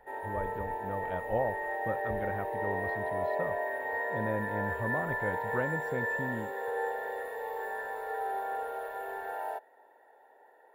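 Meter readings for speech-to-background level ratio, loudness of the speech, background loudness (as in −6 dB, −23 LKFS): −3.5 dB, −38.0 LKFS, −34.5 LKFS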